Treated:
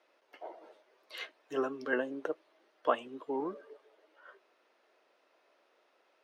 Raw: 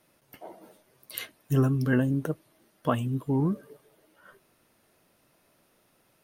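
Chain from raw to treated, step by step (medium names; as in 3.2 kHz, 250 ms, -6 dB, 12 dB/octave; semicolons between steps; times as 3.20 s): high-pass 390 Hz 24 dB/octave; distance through air 160 m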